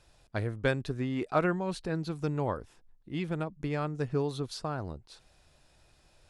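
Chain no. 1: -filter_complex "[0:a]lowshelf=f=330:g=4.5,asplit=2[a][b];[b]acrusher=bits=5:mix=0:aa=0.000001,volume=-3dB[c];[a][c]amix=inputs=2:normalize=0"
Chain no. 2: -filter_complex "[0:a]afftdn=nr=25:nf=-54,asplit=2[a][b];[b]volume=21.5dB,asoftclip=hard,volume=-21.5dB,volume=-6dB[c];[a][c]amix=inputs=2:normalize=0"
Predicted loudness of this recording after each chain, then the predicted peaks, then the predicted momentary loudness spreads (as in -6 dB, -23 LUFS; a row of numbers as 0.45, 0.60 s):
-26.0, -30.0 LUFS; -7.0, -12.0 dBFS; 9, 9 LU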